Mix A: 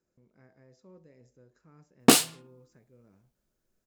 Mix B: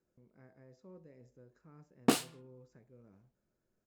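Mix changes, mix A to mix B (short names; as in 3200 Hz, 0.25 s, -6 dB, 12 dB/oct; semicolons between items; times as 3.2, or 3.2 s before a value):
background -8.5 dB; master: add high shelf 2800 Hz -8 dB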